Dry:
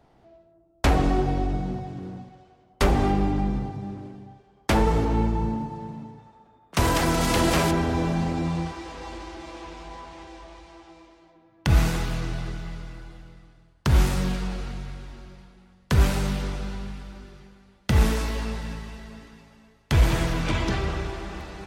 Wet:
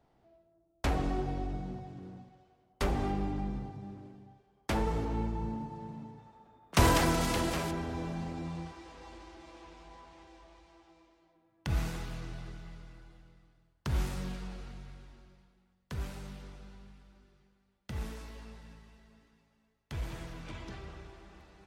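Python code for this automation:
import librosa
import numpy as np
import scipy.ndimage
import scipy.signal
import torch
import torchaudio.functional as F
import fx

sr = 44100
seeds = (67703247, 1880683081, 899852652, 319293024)

y = fx.gain(x, sr, db=fx.line((5.36, -10.5), (6.83, -1.5), (7.59, -12.5), (15.01, -12.5), (16.01, -19.0)))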